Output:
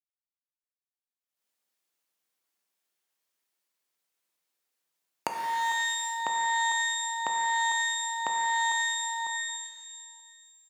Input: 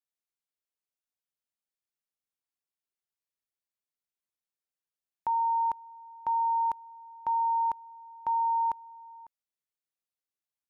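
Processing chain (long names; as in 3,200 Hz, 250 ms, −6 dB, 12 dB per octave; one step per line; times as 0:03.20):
camcorder AGC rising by 21 dB per second
in parallel at −11.5 dB: sine wavefolder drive 14 dB, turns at 6 dBFS
on the sum: downward expander −40 dBFS
downward compressor 6 to 1, threshold −23 dBFS, peak gain reduction 17.5 dB
high-pass filter 210 Hz 12 dB per octave
slap from a distant wall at 160 metres, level −28 dB
reverb with rising layers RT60 1.5 s, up +12 semitones, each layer −2 dB, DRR 3 dB
level −7.5 dB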